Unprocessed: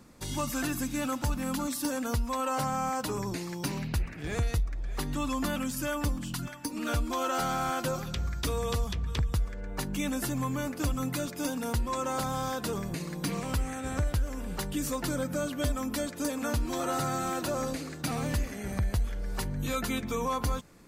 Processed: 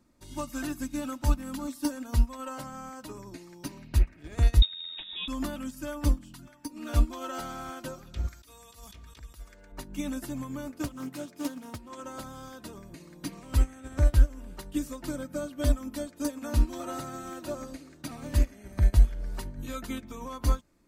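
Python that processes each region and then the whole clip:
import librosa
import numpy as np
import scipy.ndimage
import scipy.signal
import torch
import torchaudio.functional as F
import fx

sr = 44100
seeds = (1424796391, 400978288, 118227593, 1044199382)

y = fx.chain(x, sr, fx.quant_float(bits=2),
    fx.freq_invert(carrier_hz=3700), at=(4.62, 5.28))
y = fx.chain(y, sr, fx.tilt_eq(slope=3.0),
    fx.over_compress(threshold_db=-38.0, ratio=-1.0), at=(8.28, 9.72))
y = fx.chain(y, sr, fx.highpass(hz=120.0, slope=12),
    fx.doppler_dist(depth_ms=0.28), at=(10.85, 12.04))
y = fx.low_shelf(y, sr, hz=450.0, db=3.5)
y = y + 0.41 * np.pad(y, (int(3.2 * sr / 1000.0), 0))[:len(y)]
y = fx.upward_expand(y, sr, threshold_db=-32.0, expansion=2.5)
y = y * 10.0 ** (6.5 / 20.0)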